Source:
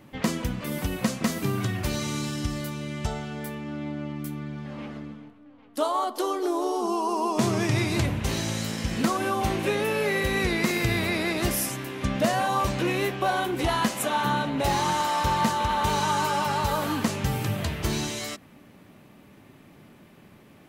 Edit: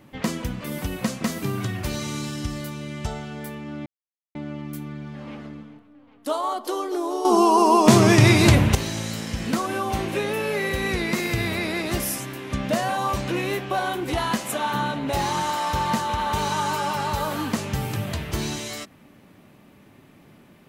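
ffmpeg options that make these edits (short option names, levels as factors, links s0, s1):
-filter_complex "[0:a]asplit=4[s0][s1][s2][s3];[s0]atrim=end=3.86,asetpts=PTS-STARTPTS,afade=t=out:st=3.856:d=0.004:c=hsin,apad=pad_dur=0.49[s4];[s1]atrim=start=3.86:end=6.762,asetpts=PTS-STARTPTS,afade=t=in:d=0.004:c=hsin[s5];[s2]atrim=start=6.758:end=8.262,asetpts=PTS-STARTPTS,volume=3.16[s6];[s3]atrim=start=8.258[s7];[s4][s5]concat=n=2:v=0:a=1[s8];[s8][s6]acrossfade=d=0.004:c1=hsin:c2=hsin[s9];[s9][s7]acrossfade=d=0.004:c1=hsin:c2=hsin"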